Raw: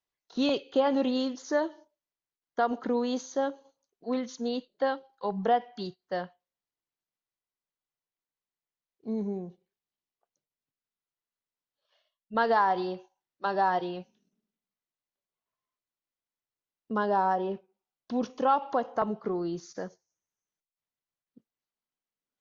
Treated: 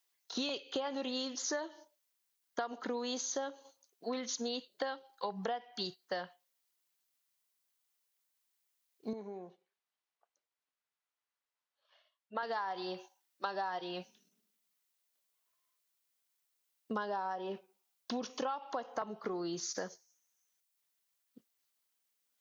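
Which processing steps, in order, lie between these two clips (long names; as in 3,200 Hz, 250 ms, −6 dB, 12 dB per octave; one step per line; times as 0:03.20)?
spectral tilt +3 dB per octave
downward compressor 10 to 1, threshold −38 dBFS, peak gain reduction 19 dB
0:09.13–0:12.43: resonant band-pass 970 Hz, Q 0.68
level +4 dB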